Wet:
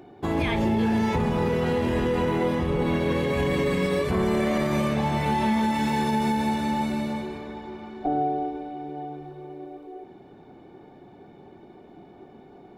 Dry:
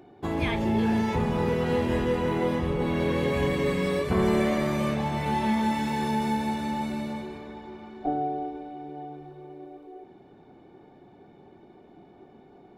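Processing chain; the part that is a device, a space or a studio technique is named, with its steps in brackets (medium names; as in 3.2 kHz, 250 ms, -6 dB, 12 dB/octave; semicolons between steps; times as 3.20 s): clipper into limiter (hard clipper -14 dBFS, distortion -45 dB; peak limiter -19.5 dBFS, peak gain reduction 5.5 dB); trim +4 dB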